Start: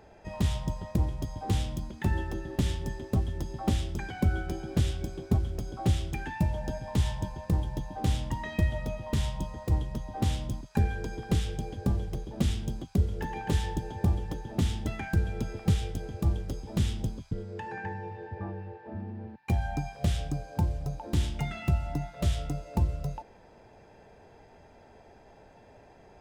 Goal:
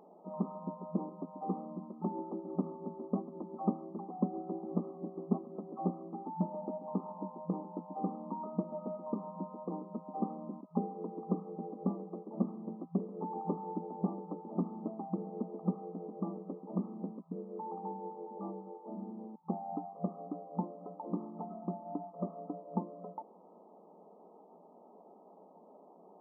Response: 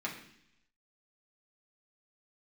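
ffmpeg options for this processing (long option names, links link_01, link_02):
-af "afftfilt=real='re*between(b*sr/4096,170,1300)':imag='im*between(b*sr/4096,170,1300)':win_size=4096:overlap=0.75,volume=-2dB"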